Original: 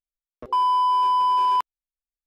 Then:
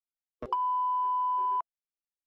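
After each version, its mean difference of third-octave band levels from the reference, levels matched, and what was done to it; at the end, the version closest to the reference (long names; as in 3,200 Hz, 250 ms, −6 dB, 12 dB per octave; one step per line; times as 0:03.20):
5.0 dB: noise reduction from a noise print of the clip's start 19 dB
treble cut that deepens with the level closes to 900 Hz, closed at −19 dBFS
downward compressor, threshold −27 dBFS, peak gain reduction 7 dB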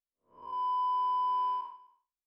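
3.0 dB: spectrum smeared in time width 222 ms
low-pass filter 1,200 Hz 6 dB per octave
on a send: single-tap delay 260 ms −23 dB
on the sum: level −8.5 dB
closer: second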